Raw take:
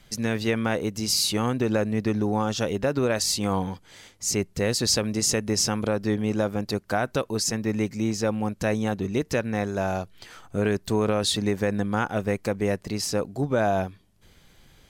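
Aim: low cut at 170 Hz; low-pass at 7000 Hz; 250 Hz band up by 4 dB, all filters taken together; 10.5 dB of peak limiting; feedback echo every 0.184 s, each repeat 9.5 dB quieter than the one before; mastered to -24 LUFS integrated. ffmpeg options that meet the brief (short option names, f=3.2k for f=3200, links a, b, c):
-af "highpass=170,lowpass=7k,equalizer=f=250:t=o:g=6.5,alimiter=limit=-19.5dB:level=0:latency=1,aecho=1:1:184|368|552|736:0.335|0.111|0.0365|0.012,volume=5dB"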